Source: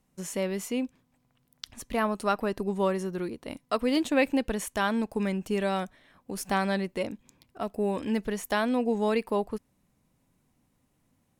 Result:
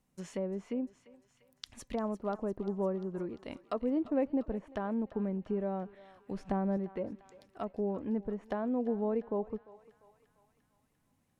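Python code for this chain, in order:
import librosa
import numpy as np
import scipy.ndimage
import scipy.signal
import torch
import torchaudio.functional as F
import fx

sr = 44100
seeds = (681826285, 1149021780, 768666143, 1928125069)

y = fx.env_lowpass_down(x, sr, base_hz=710.0, full_db=-26.5)
y = fx.tilt_eq(y, sr, slope=-1.5, at=(6.31, 6.77))
y = fx.echo_thinned(y, sr, ms=347, feedback_pct=72, hz=910.0, wet_db=-14.5)
y = F.gain(torch.from_numpy(y), -5.0).numpy()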